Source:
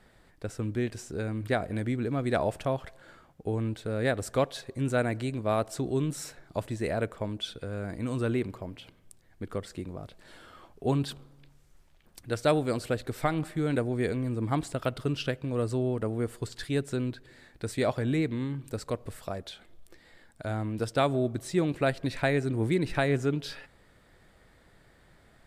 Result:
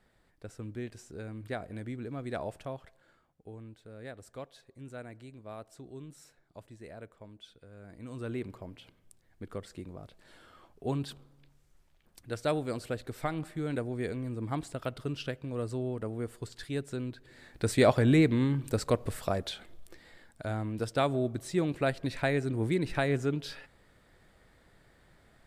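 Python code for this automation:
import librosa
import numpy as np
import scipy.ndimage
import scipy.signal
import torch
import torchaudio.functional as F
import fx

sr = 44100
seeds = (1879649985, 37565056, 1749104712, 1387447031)

y = fx.gain(x, sr, db=fx.line((2.51, -9.0), (3.67, -17.0), (7.7, -17.0), (8.5, -5.5), (17.13, -5.5), (17.66, 5.0), (19.49, 5.0), (20.63, -2.5)))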